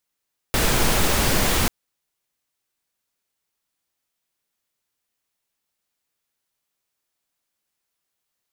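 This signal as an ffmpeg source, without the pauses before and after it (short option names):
-f lavfi -i "anoisesrc=c=pink:a=0.575:d=1.14:r=44100:seed=1"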